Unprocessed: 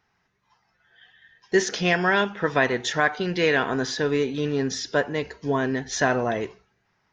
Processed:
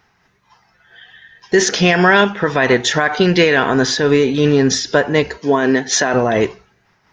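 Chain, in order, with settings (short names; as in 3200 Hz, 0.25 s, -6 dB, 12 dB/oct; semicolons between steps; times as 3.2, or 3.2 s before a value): 5.38–6.14 HPF 220 Hz 12 dB/oct; maximiser +14.5 dB; noise-modulated level, depth 50%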